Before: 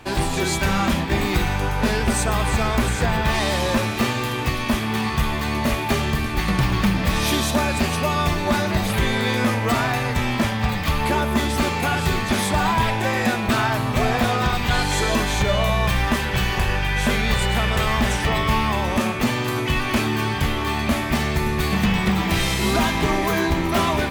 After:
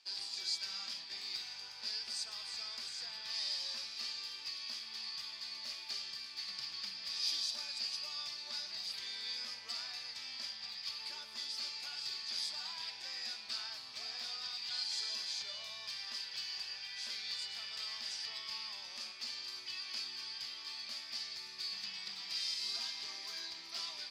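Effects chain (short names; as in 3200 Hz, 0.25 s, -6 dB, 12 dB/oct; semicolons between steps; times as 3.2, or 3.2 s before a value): band-pass 4800 Hz, Q 11; gain +1.5 dB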